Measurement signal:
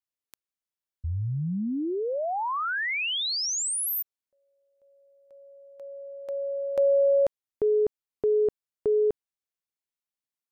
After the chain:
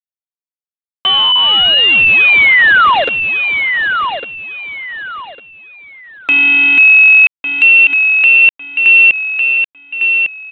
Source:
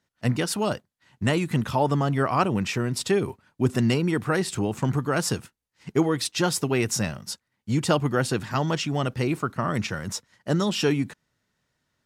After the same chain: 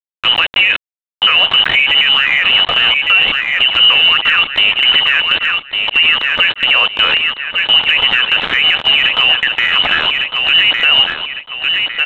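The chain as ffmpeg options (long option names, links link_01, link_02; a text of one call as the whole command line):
ffmpeg -i in.wav -af "lowshelf=frequency=350:gain=-7,lowpass=frequency=2300:width_type=q:width=0.5098,lowpass=frequency=2300:width_type=q:width=0.6013,lowpass=frequency=2300:width_type=q:width=0.9,lowpass=frequency=2300:width_type=q:width=2.563,afreqshift=-2700,dynaudnorm=framelen=140:gausssize=5:maxgain=10dB,equalizer=frequency=450:width=4.5:gain=-7,afreqshift=430,highpass=frequency=66:width=0.5412,highpass=frequency=66:width=1.3066,aresample=8000,aeval=exprs='val(0)*gte(abs(val(0)),0.0473)':channel_layout=same,aresample=44100,aecho=1:1:1153|2306|3459:0.211|0.0571|0.0154,acompressor=threshold=-31dB:ratio=2:attack=0.43:release=57:knee=1:detection=peak,alimiter=level_in=20.5dB:limit=-1dB:release=50:level=0:latency=1,volume=-1dB" out.wav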